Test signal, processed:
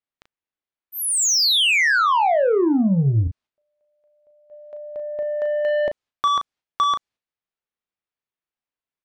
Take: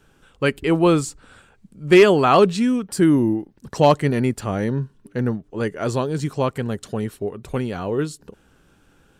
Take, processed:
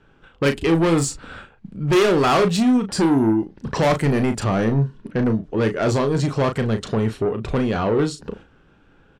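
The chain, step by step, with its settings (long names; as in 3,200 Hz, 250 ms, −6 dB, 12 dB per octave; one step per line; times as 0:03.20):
noise gate −50 dBFS, range −9 dB
low-pass that shuts in the quiet parts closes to 3,000 Hz, open at −13 dBFS
in parallel at +3 dB: downward compressor 6 to 1, threshold −29 dBFS
on the sum: soft clipping −17.5 dBFS
double-tracking delay 36 ms −8 dB
level +3 dB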